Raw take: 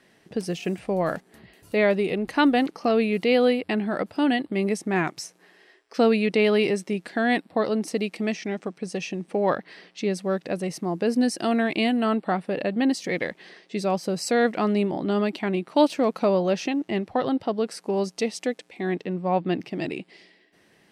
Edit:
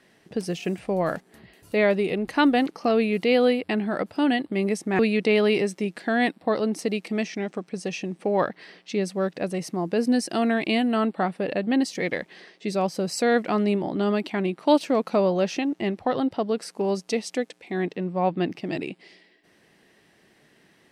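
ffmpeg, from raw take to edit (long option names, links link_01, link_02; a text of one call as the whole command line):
ffmpeg -i in.wav -filter_complex "[0:a]asplit=2[link_01][link_02];[link_01]atrim=end=4.992[link_03];[link_02]atrim=start=6.078[link_04];[link_03][link_04]acrossfade=duration=0.004:curve1=hsin:curve2=hsin" out.wav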